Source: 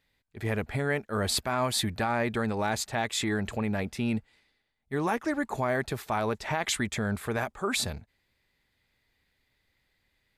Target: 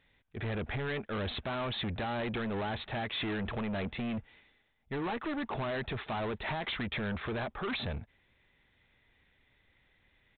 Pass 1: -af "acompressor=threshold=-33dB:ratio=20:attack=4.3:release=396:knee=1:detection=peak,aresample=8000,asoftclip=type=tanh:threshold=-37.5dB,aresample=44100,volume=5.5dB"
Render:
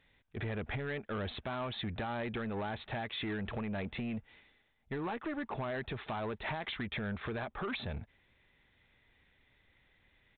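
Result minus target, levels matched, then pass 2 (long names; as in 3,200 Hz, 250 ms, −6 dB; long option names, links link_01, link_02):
downward compressor: peak gain reduction +7.5 dB
-af "acompressor=threshold=-25dB:ratio=20:attack=4.3:release=396:knee=1:detection=peak,aresample=8000,asoftclip=type=tanh:threshold=-37.5dB,aresample=44100,volume=5.5dB"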